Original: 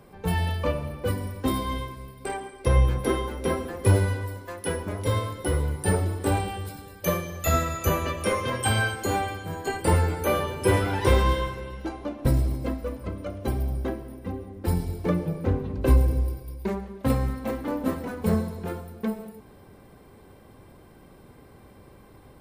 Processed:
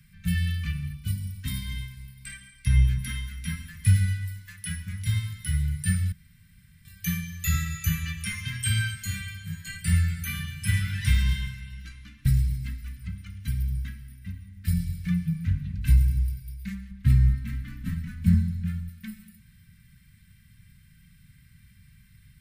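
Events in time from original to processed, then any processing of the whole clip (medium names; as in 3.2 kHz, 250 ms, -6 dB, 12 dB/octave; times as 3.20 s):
0.93–1.43 s: peaking EQ 1.8 kHz -13.5 dB 0.64 oct
6.12–6.85 s: room tone
16.91–18.89 s: tilt EQ -2 dB/octave
whole clip: elliptic band-stop 170–1800 Hz, stop band 50 dB; dynamic bell 170 Hz, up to +3 dB, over -36 dBFS, Q 0.82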